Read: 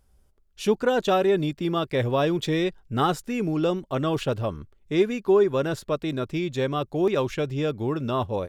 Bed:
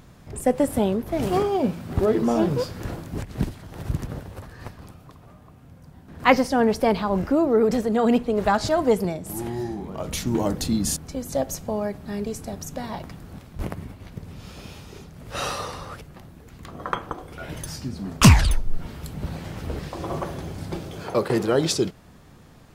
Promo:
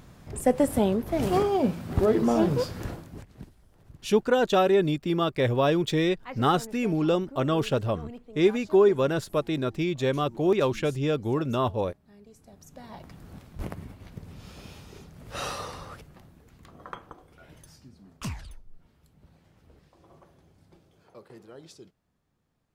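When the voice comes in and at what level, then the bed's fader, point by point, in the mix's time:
3.45 s, 0.0 dB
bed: 0:02.81 −1.5 dB
0:03.58 −24 dB
0:12.23 −24 dB
0:13.27 −5 dB
0:15.82 −5 dB
0:18.82 −26.5 dB

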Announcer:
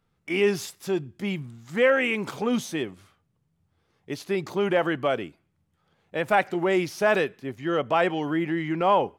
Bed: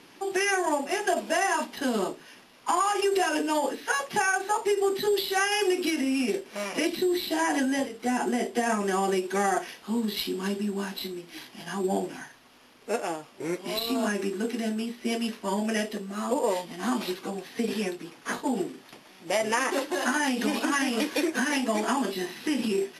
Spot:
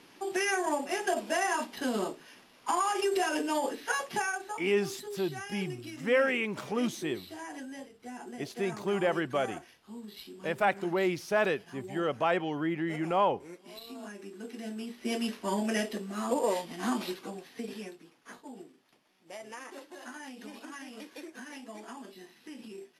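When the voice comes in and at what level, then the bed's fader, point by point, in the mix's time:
4.30 s, −5.5 dB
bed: 0:04.10 −4 dB
0:04.75 −16.5 dB
0:14.19 −16.5 dB
0:15.20 −2.5 dB
0:16.86 −2.5 dB
0:18.43 −18.5 dB

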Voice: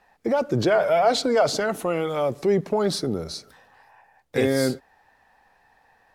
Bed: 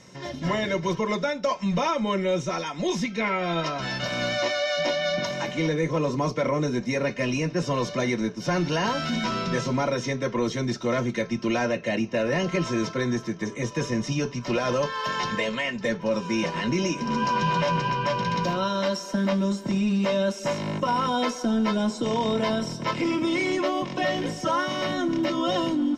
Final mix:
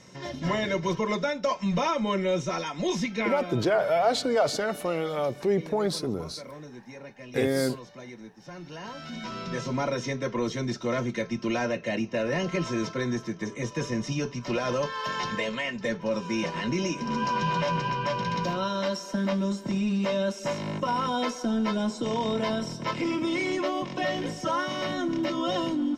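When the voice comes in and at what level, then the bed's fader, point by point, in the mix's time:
3.00 s, −4.0 dB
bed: 0:03.20 −1.5 dB
0:03.71 −18 dB
0:08.56 −18 dB
0:09.82 −3 dB

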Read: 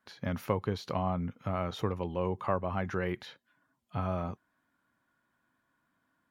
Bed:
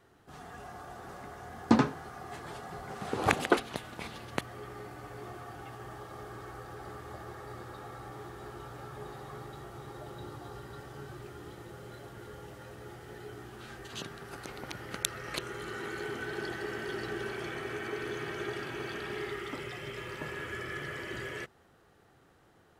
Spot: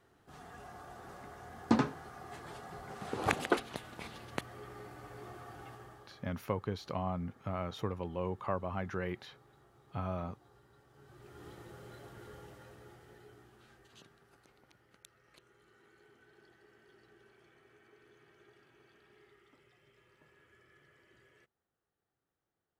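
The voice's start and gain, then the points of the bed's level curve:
6.00 s, −4.5 dB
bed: 0:05.70 −4.5 dB
0:06.35 −19 dB
0:10.88 −19 dB
0:11.45 −4.5 dB
0:12.36 −4.5 dB
0:15.03 −26.5 dB

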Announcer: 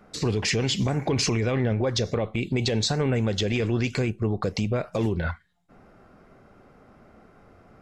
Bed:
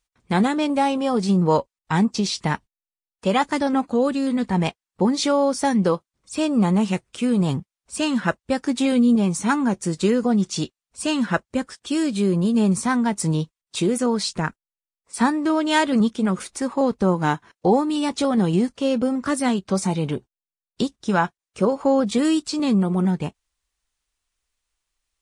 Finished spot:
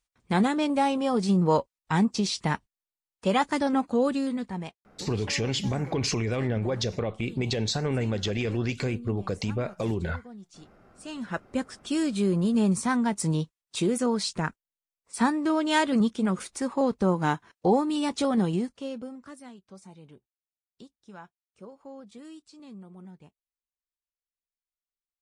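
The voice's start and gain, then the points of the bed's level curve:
4.85 s, −3.5 dB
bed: 0:04.17 −4 dB
0:05.09 −25.5 dB
0:10.71 −25.5 dB
0:11.59 −4.5 dB
0:18.39 −4.5 dB
0:19.52 −26 dB

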